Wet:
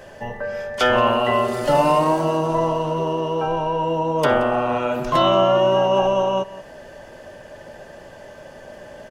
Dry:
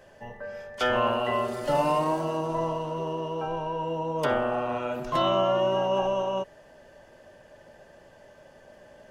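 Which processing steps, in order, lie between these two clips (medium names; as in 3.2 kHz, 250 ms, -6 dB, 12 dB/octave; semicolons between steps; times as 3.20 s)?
delay 177 ms -18.5 dB; in parallel at -1.5 dB: compression, threshold -38 dBFS, peak gain reduction 17 dB; on the sum: trim +6.5 dB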